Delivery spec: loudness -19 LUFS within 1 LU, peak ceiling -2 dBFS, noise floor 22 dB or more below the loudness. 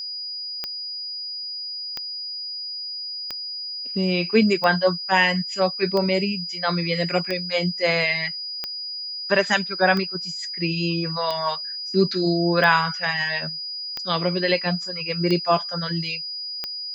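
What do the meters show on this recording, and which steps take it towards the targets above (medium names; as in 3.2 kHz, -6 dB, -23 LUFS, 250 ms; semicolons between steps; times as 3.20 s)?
clicks found 13; steady tone 4.9 kHz; tone level -29 dBFS; loudness -23.0 LUFS; peak level -4.5 dBFS; loudness target -19.0 LUFS
-> de-click; band-stop 4.9 kHz, Q 30; trim +4 dB; peak limiter -2 dBFS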